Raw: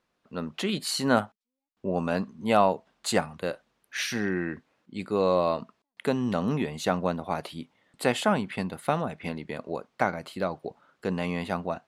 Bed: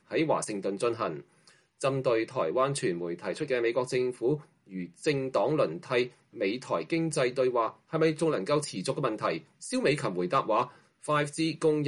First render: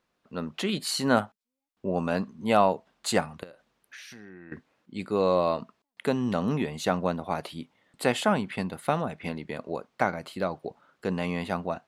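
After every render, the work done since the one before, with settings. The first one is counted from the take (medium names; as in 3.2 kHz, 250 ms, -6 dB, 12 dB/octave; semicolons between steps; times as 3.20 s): 3.43–4.52 s: compression 12:1, threshold -42 dBFS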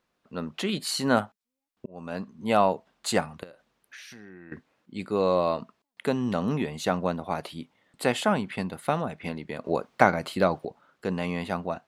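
1.86–2.75 s: fade in equal-power; 9.65–10.65 s: gain +6.5 dB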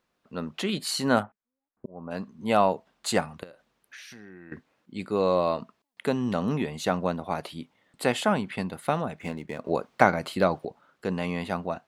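1.22–2.10 s: low-pass 2.4 kHz -> 1.2 kHz 24 dB/octave; 9.19–9.68 s: median filter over 9 samples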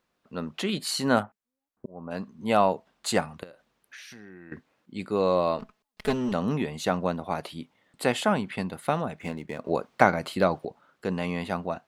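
5.59–6.32 s: comb filter that takes the minimum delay 4.7 ms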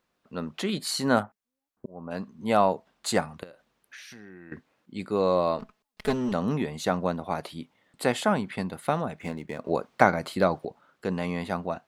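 dynamic bell 2.8 kHz, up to -5 dB, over -50 dBFS, Q 4.1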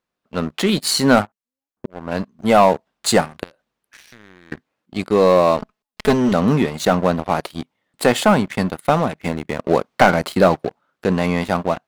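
waveshaping leveller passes 3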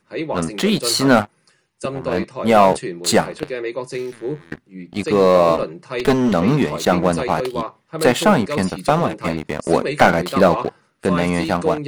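add bed +2 dB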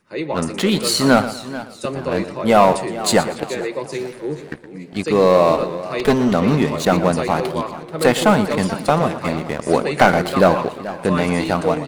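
feedback delay 118 ms, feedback 32%, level -13.5 dB; modulated delay 432 ms, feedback 39%, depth 123 cents, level -15.5 dB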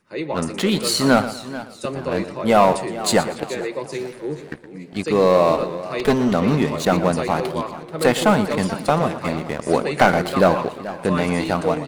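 trim -2 dB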